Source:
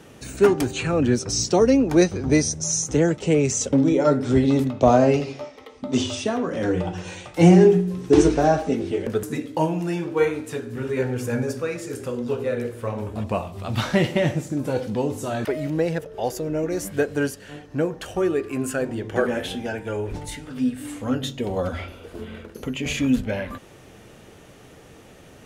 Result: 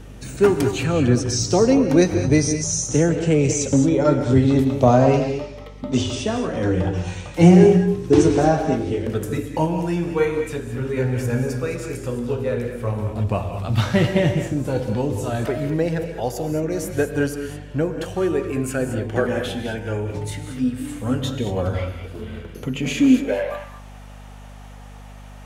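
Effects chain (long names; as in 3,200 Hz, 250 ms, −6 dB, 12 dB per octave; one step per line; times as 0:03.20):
reverb whose tail is shaped and stops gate 240 ms rising, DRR 6.5 dB
high-pass filter sweep 97 Hz → 810 Hz, 0:22.60–0:23.65
mains hum 50 Hz, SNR 20 dB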